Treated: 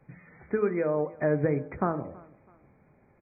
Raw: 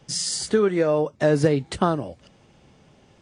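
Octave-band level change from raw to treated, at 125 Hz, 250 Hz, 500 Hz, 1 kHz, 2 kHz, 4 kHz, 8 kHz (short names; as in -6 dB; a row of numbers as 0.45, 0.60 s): -6.5 dB, -6.5 dB, -6.5 dB, -6.5 dB, -6.0 dB, under -40 dB, under -40 dB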